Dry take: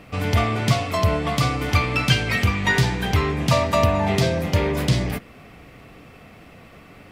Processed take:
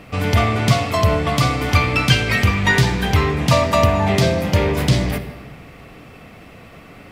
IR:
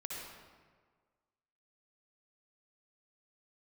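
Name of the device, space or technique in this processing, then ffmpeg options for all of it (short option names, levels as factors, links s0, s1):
saturated reverb return: -filter_complex "[0:a]asplit=2[s0][s1];[1:a]atrim=start_sample=2205[s2];[s1][s2]afir=irnorm=-1:irlink=0,asoftclip=type=tanh:threshold=0.2,volume=0.447[s3];[s0][s3]amix=inputs=2:normalize=0,volume=1.26"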